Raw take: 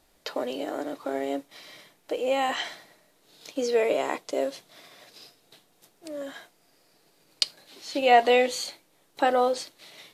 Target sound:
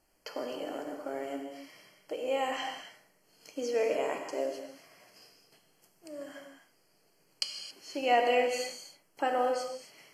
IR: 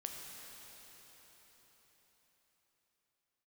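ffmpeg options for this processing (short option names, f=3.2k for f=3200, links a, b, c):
-filter_complex "[0:a]asuperstop=centerf=3700:order=12:qfactor=4.1[a];[1:a]atrim=start_sample=2205,afade=t=out:st=0.33:d=0.01,atrim=end_sample=14994[b];[a][b]afir=irnorm=-1:irlink=0,volume=-3.5dB"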